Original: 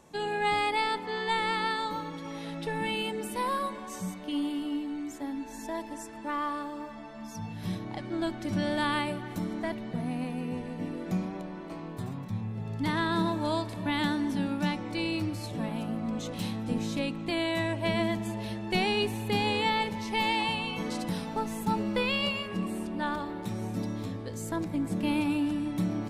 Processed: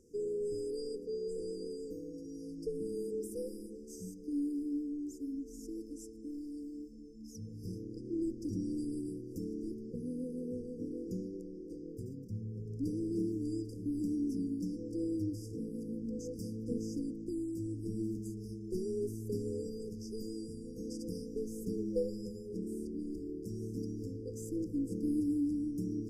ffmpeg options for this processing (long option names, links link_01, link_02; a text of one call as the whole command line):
ffmpeg -i in.wav -filter_complex "[0:a]asettb=1/sr,asplit=3[link_01][link_02][link_03];[link_01]atrim=end=17.244[link_04];[link_02]atrim=start=17.24:end=21.05,asetpts=PTS-STARTPTS,afade=type=in:duration=0.004:curve=qsin,afade=type=out:start_time=3.806:duration=0.004:curve=qsin,equalizer=frequency=690:width=1.5:gain=-12.5[link_05];[link_03]atrim=start=21.046[link_06];[link_04][link_05]acrossfade=duration=0.004:curve1=hsin:curve2=qsin[link_07];[link_07][link_06]acrossfade=duration=0.004:curve1=qsin:curve2=hsin,highshelf=frequency=3800:gain=-9,afftfilt=real='re*(1-between(b*sr/4096,520,4700))':imag='im*(1-between(b*sr/4096,520,4700))':win_size=4096:overlap=0.75,equalizer=frequency=160:width=1.4:gain=-13" out.wav